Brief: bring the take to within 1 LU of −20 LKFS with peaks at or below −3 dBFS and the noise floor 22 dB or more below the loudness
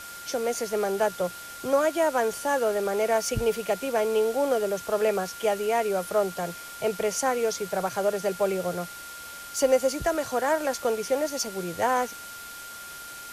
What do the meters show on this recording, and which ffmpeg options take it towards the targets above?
interfering tone 1,400 Hz; level of the tone −41 dBFS; background noise floor −41 dBFS; target noise floor −49 dBFS; integrated loudness −26.5 LKFS; sample peak −10.0 dBFS; target loudness −20.0 LKFS
→ -af "bandreject=frequency=1400:width=30"
-af "afftdn=noise_reduction=8:noise_floor=-41"
-af "volume=6.5dB"

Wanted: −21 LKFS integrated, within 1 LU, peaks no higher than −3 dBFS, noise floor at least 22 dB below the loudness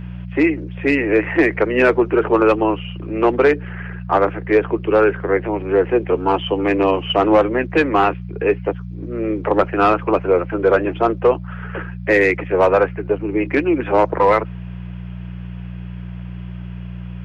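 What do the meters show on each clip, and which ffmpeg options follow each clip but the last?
mains hum 60 Hz; hum harmonics up to 180 Hz; level of the hum −27 dBFS; integrated loudness −17.5 LKFS; sample peak −4.5 dBFS; target loudness −21.0 LKFS
→ -af "bandreject=frequency=60:width_type=h:width=4,bandreject=frequency=120:width_type=h:width=4,bandreject=frequency=180:width_type=h:width=4"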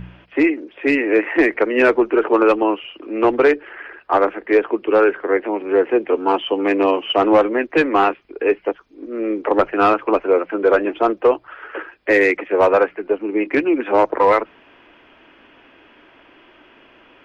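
mains hum none found; integrated loudness −17.5 LKFS; sample peak −5.0 dBFS; target loudness −21.0 LKFS
→ -af "volume=-3.5dB"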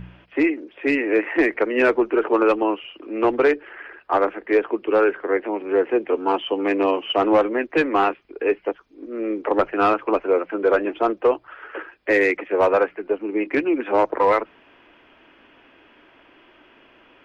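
integrated loudness −21.0 LKFS; sample peak −8.5 dBFS; background noise floor −54 dBFS

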